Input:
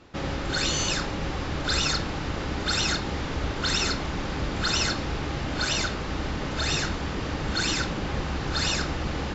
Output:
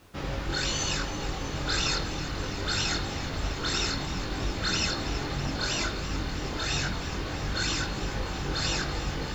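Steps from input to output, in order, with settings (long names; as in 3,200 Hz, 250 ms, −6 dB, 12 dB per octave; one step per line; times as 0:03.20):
multi-voice chorus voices 4, 0.71 Hz, delay 22 ms, depth 1.5 ms
hum removal 116.6 Hz, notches 37
bit reduction 10 bits
on a send: delay with a high-pass on its return 328 ms, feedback 81%, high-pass 1,700 Hz, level −13 dB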